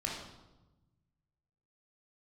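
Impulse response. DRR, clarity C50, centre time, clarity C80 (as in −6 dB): −2.5 dB, 2.0 dB, 51 ms, 5.5 dB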